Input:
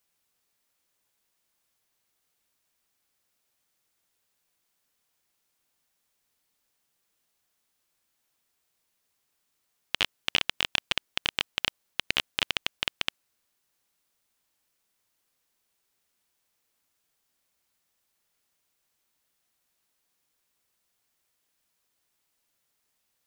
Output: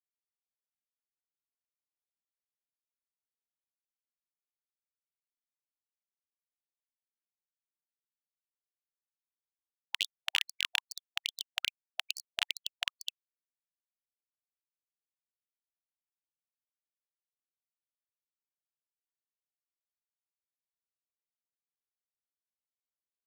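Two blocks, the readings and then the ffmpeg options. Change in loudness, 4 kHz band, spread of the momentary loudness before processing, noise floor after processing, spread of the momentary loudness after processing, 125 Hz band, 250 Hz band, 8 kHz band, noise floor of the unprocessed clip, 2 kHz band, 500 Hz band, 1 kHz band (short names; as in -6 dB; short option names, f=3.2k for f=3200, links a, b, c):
-6.0 dB, -6.0 dB, 6 LU, under -85 dBFS, 8 LU, under -40 dB, under -40 dB, -2.5 dB, -77 dBFS, -6.5 dB, under -25 dB, -10.0 dB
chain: -af "acrusher=bits=5:dc=4:mix=0:aa=0.000001,afftfilt=real='re*gte(b*sr/1024,670*pow(4500/670,0.5+0.5*sin(2*PI*2.4*pts/sr)))':imag='im*gte(b*sr/1024,670*pow(4500/670,0.5+0.5*sin(2*PI*2.4*pts/sr)))':win_size=1024:overlap=0.75,volume=-4.5dB"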